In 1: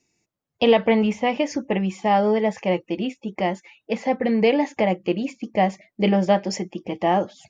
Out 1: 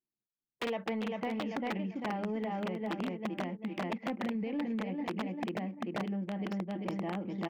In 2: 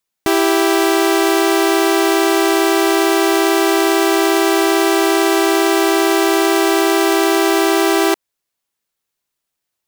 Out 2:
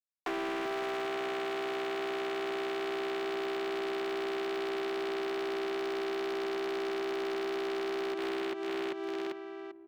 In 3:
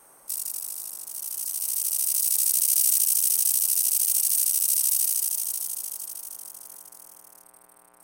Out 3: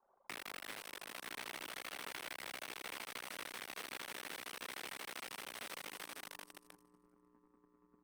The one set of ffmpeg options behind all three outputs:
ffmpeg -i in.wav -filter_complex "[0:a]aecho=1:1:393|786|1179|1572|1965:0.596|0.22|0.0815|0.0302|0.0112,alimiter=limit=-12dB:level=0:latency=1:release=261,asubboost=boost=7.5:cutoff=210,acompressor=threshold=-29dB:ratio=16,aeval=exprs='(mod(16.8*val(0)+1,2)-1)/16.8':channel_layout=same,acrossover=split=180 3700:gain=0.0794 1 0.0891[link_01][link_02][link_03];[link_01][link_02][link_03]amix=inputs=3:normalize=0,asoftclip=type=tanh:threshold=-23dB,anlmdn=0.00251" out.wav

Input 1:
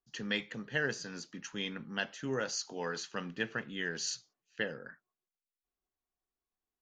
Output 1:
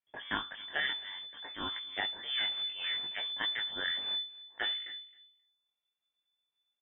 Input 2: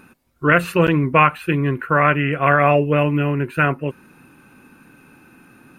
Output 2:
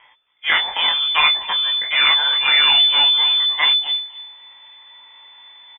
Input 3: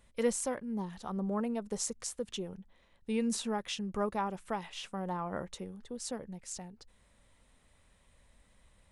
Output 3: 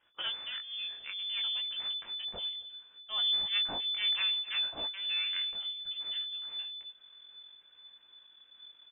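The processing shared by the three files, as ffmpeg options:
ffmpeg -i in.wav -filter_complex "[0:a]aeval=exprs='if(lt(val(0),0),0.447*val(0),val(0))':channel_layout=same,tiltshelf=frequency=1200:gain=-7.5,asplit=2[link_01][link_02];[link_02]asoftclip=type=hard:threshold=-12dB,volume=-3dB[link_03];[link_01][link_03]amix=inputs=2:normalize=0,flanger=delay=16.5:depth=5.8:speed=0.63,asubboost=boost=10:cutoff=52,asplit=2[link_04][link_05];[link_05]adelay=266,lowpass=frequency=1200:poles=1,volume=-17dB,asplit=2[link_06][link_07];[link_07]adelay=266,lowpass=frequency=1200:poles=1,volume=0.19[link_08];[link_06][link_08]amix=inputs=2:normalize=0[link_09];[link_04][link_09]amix=inputs=2:normalize=0,lowpass=frequency=3000:width_type=q:width=0.5098,lowpass=frequency=3000:width_type=q:width=0.6013,lowpass=frequency=3000:width_type=q:width=0.9,lowpass=frequency=3000:width_type=q:width=2.563,afreqshift=-3500,volume=-1dB" out.wav

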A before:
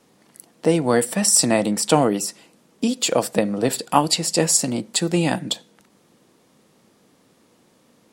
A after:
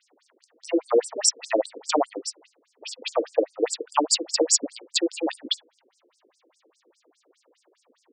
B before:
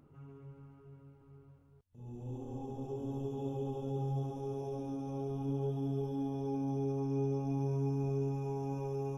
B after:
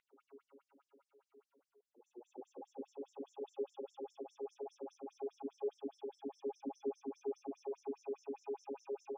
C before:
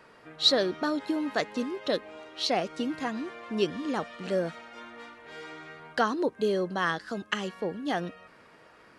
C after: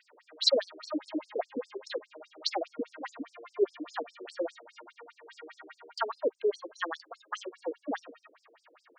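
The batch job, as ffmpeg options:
ffmpeg -i in.wav -af "afftfilt=real='re*between(b*sr/1024,360*pow(6900/360,0.5+0.5*sin(2*PI*4.9*pts/sr))/1.41,360*pow(6900/360,0.5+0.5*sin(2*PI*4.9*pts/sr))*1.41)':imag='im*between(b*sr/1024,360*pow(6900/360,0.5+0.5*sin(2*PI*4.9*pts/sr))/1.41,360*pow(6900/360,0.5+0.5*sin(2*PI*4.9*pts/sr))*1.41)':win_size=1024:overlap=0.75,volume=2dB" out.wav

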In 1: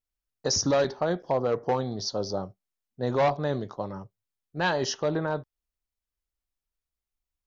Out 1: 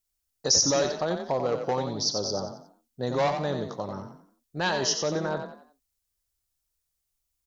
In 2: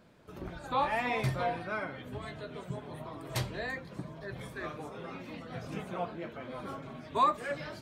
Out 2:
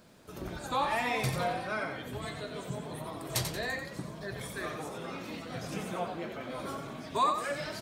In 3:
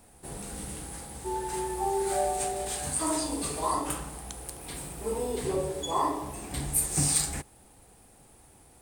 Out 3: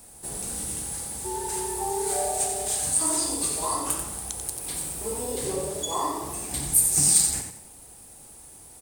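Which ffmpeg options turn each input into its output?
ffmpeg -i in.wav -filter_complex "[0:a]bass=frequency=250:gain=-1,treble=frequency=4000:gain=10,asplit=2[link_01][link_02];[link_02]acompressor=threshold=-35dB:ratio=6,volume=-1dB[link_03];[link_01][link_03]amix=inputs=2:normalize=0,asplit=5[link_04][link_05][link_06][link_07][link_08];[link_05]adelay=90,afreqshift=33,volume=-7dB[link_09];[link_06]adelay=180,afreqshift=66,volume=-15.9dB[link_10];[link_07]adelay=270,afreqshift=99,volume=-24.7dB[link_11];[link_08]adelay=360,afreqshift=132,volume=-33.6dB[link_12];[link_04][link_09][link_10][link_11][link_12]amix=inputs=5:normalize=0,volume=-3.5dB" out.wav

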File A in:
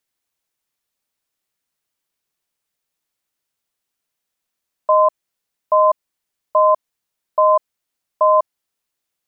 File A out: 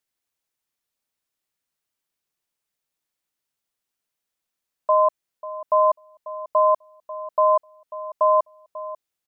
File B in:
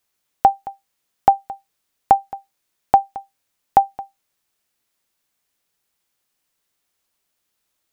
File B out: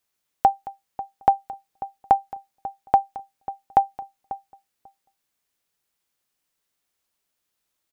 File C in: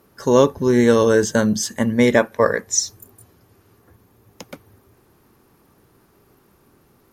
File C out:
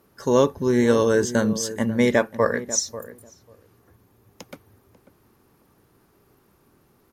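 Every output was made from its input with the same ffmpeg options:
ffmpeg -i in.wav -filter_complex "[0:a]asplit=2[link_01][link_02];[link_02]adelay=542,lowpass=frequency=880:poles=1,volume=-13dB,asplit=2[link_03][link_04];[link_04]adelay=542,lowpass=frequency=880:poles=1,volume=0.15[link_05];[link_01][link_03][link_05]amix=inputs=3:normalize=0,volume=-4dB" out.wav

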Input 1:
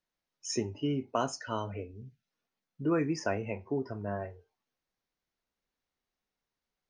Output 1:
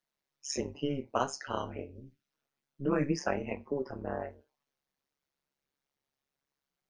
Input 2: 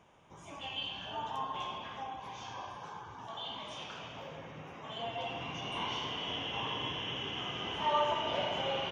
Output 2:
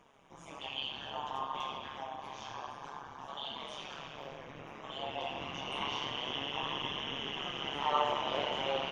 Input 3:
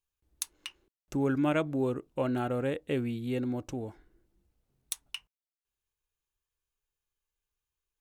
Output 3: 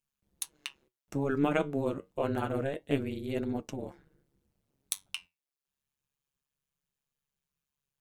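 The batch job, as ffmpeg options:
ffmpeg -i in.wav -af "tremolo=f=140:d=1,flanger=delay=4.1:depth=7.8:regen=69:speed=0.28:shape=triangular,lowshelf=frequency=100:gain=-6.5,volume=8.5dB" out.wav

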